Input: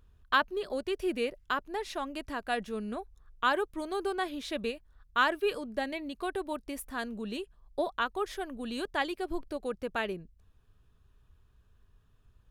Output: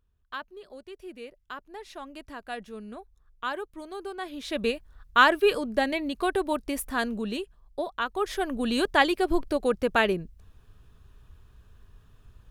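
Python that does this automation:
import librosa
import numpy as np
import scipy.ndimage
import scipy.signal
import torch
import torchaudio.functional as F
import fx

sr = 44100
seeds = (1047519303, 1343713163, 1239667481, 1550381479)

y = fx.gain(x, sr, db=fx.line((1.13, -11.0), (2.13, -4.5), (4.16, -4.5), (4.71, 8.0), (7.08, 8.0), (7.89, -1.0), (8.51, 10.0)))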